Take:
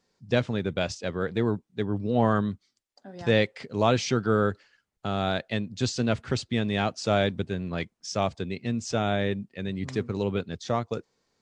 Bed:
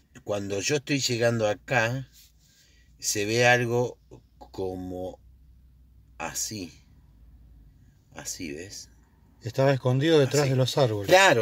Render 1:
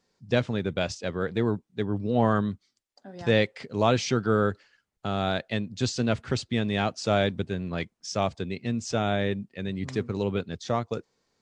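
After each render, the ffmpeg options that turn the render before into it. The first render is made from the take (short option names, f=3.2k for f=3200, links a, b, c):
-af anull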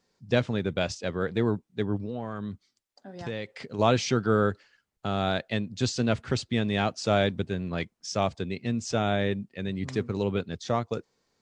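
-filter_complex "[0:a]asplit=3[a][b][c];[a]afade=t=out:st=1.96:d=0.02[d];[b]acompressor=threshold=-30dB:ratio=5:attack=3.2:release=140:knee=1:detection=peak,afade=t=in:st=1.96:d=0.02,afade=t=out:st=3.78:d=0.02[e];[c]afade=t=in:st=3.78:d=0.02[f];[d][e][f]amix=inputs=3:normalize=0"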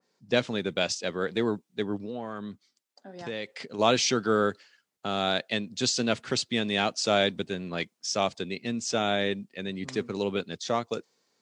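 -af "highpass=200,adynamicequalizer=threshold=0.00708:dfrequency=2400:dqfactor=0.7:tfrequency=2400:tqfactor=0.7:attack=5:release=100:ratio=0.375:range=3.5:mode=boostabove:tftype=highshelf"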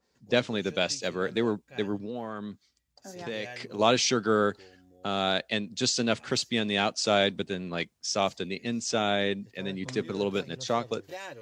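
-filter_complex "[1:a]volume=-23.5dB[a];[0:a][a]amix=inputs=2:normalize=0"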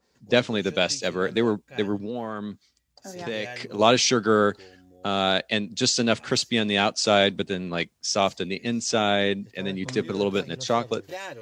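-af "volume=4.5dB"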